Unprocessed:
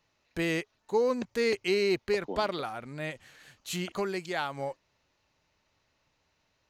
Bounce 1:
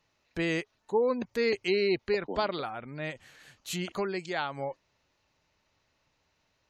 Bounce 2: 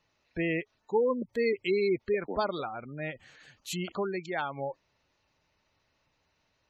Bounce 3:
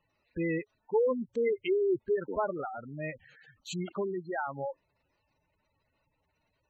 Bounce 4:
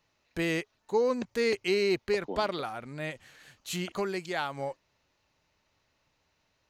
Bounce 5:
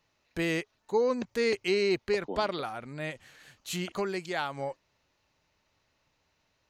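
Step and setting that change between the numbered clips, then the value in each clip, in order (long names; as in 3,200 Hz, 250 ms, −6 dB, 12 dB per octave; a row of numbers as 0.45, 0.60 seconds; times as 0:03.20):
gate on every frequency bin, under each frame's peak: −35, −20, −10, −60, −50 decibels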